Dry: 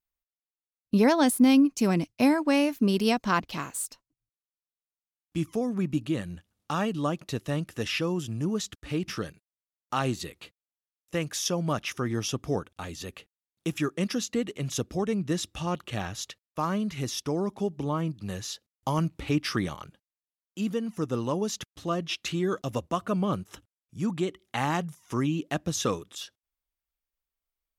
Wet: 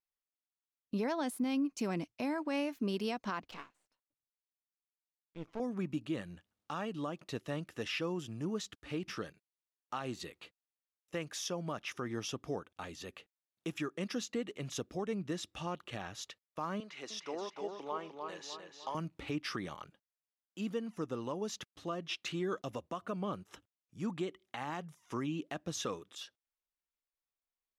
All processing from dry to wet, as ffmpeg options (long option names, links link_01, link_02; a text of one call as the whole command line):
ffmpeg -i in.wav -filter_complex "[0:a]asettb=1/sr,asplit=3[link_01][link_02][link_03];[link_01]atrim=end=3.514[link_04];[link_02]atrim=start=3.51:end=5.6,asetpts=PTS-STARTPTS,afade=type=in:duration=0.004:curve=qsin,afade=type=out:start_time=2.086:duration=0.004:curve=qsin,lowpass=4300,aeval=exprs='max(val(0),0)':channel_layout=same,aeval=exprs='val(0)*pow(10,-20*(0.5-0.5*cos(2*PI*1.5*n/s))/20)':channel_layout=same[link_05];[link_03]atrim=start=5.596[link_06];[link_04][link_05]acrossfade=duration=0.004:curve1=hsin:curve2=qsin[link_07];[link_07][link_06]acrossfade=duration=0.004:curve1=qsin:curve2=hsin,asettb=1/sr,asplit=3[link_08][link_09][link_10];[link_08]atrim=end=16.804[link_11];[link_09]atrim=start=16.8:end=18.95,asetpts=PTS-STARTPTS,afade=type=in:duration=0.004:curve=qsin,afade=type=out:start_time=2.146:duration=0.004:curve=qsin,highpass=490,lowpass=6400,asplit=2[link_12][link_13];[link_13]adelay=302,lowpass=frequency=4200:poles=1,volume=-5dB,asplit=2[link_14][link_15];[link_15]adelay=302,lowpass=frequency=4200:poles=1,volume=0.47,asplit=2[link_16][link_17];[link_17]adelay=302,lowpass=frequency=4200:poles=1,volume=0.47,asplit=2[link_18][link_19];[link_19]adelay=302,lowpass=frequency=4200:poles=1,volume=0.47,asplit=2[link_20][link_21];[link_21]adelay=302,lowpass=frequency=4200:poles=1,volume=0.47,asplit=2[link_22][link_23];[link_23]adelay=302,lowpass=frequency=4200:poles=1,volume=0.47[link_24];[link_12][link_14][link_16][link_18][link_20][link_22][link_24]amix=inputs=7:normalize=0,atrim=end_sample=94815[link_25];[link_10]atrim=start=18.946[link_26];[link_11][link_25]acrossfade=duration=0.004:curve1=hsin:curve2=qsin[link_27];[link_27][link_26]acrossfade=duration=0.004:curve1=qsin:curve2=hsin,lowpass=frequency=4000:poles=1,lowshelf=frequency=170:gain=-11,alimiter=limit=-22dB:level=0:latency=1:release=202,volume=-4.5dB" out.wav